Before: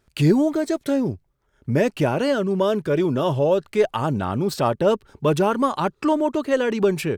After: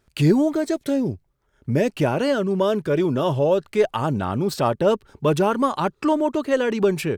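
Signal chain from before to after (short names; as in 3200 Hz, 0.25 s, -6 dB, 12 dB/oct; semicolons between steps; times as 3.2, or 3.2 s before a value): 0.74–1.92 dynamic EQ 1200 Hz, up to -7 dB, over -39 dBFS, Q 1.3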